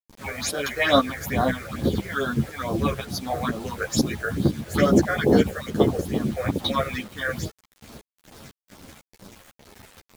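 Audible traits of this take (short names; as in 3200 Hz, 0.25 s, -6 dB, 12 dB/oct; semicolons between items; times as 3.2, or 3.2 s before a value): phasing stages 6, 2.3 Hz, lowest notch 230–2400 Hz; tremolo saw up 2 Hz, depth 70%; a quantiser's noise floor 8-bit, dither none; a shimmering, thickened sound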